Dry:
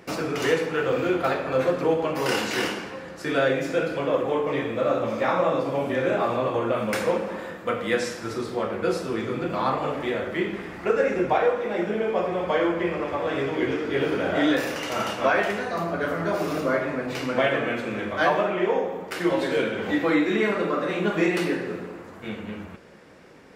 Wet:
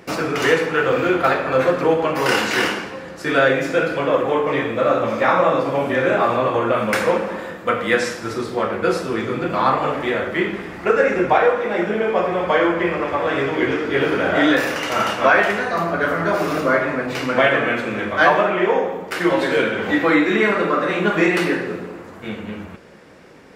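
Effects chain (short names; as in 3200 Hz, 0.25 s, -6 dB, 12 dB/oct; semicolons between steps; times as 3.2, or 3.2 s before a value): dynamic EQ 1500 Hz, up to +5 dB, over -36 dBFS, Q 0.84; gain +4.5 dB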